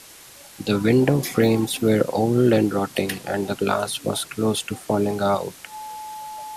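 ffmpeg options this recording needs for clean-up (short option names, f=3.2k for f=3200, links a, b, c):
-af "bandreject=f=860:w=30,afwtdn=0.0071"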